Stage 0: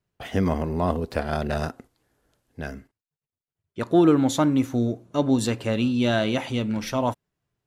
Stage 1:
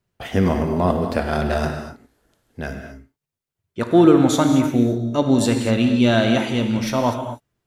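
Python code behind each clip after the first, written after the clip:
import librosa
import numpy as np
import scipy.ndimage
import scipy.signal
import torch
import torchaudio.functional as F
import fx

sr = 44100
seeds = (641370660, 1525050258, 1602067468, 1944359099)

y = fx.rev_gated(x, sr, seeds[0], gate_ms=270, shape='flat', drr_db=4.5)
y = y * 10.0 ** (4.0 / 20.0)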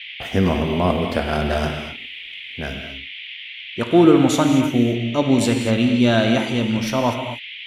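y = fx.dmg_noise_band(x, sr, seeds[1], low_hz=2000.0, high_hz=3400.0, level_db=-35.0)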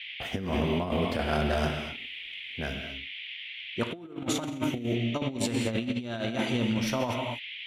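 y = fx.over_compress(x, sr, threshold_db=-20.0, ratio=-0.5)
y = y * 10.0 ** (-8.5 / 20.0)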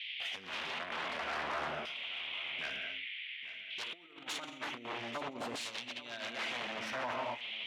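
y = 10.0 ** (-27.5 / 20.0) * (np.abs((x / 10.0 ** (-27.5 / 20.0) + 3.0) % 4.0 - 2.0) - 1.0)
y = fx.filter_lfo_bandpass(y, sr, shape='saw_down', hz=0.54, low_hz=910.0, high_hz=4500.0, q=0.89)
y = y + 10.0 ** (-16.0 / 20.0) * np.pad(y, (int(839 * sr / 1000.0), 0))[:len(y)]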